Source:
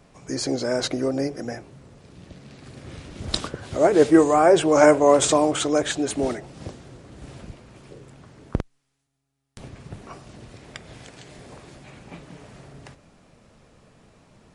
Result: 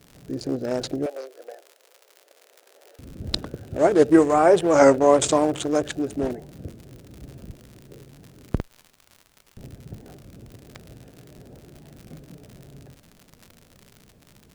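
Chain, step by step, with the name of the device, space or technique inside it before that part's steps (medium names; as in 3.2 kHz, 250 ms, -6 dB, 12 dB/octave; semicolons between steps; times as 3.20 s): local Wiener filter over 41 samples; warped LP (warped record 33 1/3 rpm, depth 160 cents; crackle 110 per s -35 dBFS; pink noise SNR 40 dB); 1.06–2.99 s: steep high-pass 470 Hz 36 dB/octave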